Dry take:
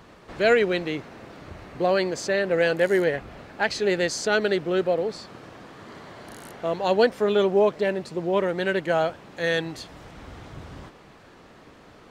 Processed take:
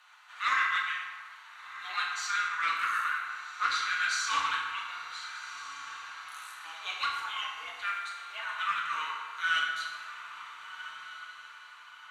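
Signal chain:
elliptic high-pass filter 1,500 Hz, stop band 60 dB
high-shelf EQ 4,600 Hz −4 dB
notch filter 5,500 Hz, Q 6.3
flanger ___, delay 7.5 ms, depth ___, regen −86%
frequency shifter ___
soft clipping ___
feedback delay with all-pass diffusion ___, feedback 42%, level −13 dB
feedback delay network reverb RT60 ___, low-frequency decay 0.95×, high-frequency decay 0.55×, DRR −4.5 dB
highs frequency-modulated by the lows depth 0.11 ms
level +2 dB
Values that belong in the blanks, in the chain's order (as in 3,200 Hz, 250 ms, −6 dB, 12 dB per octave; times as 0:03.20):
1 Hz, 6.7 ms, −350 Hz, −23.5 dBFS, 1,455 ms, 1.6 s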